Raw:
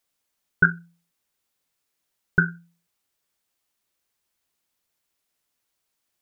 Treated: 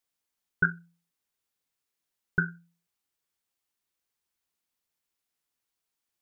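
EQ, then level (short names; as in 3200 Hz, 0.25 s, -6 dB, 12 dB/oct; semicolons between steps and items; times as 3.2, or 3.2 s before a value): notch 600 Hz, Q 12; -7.0 dB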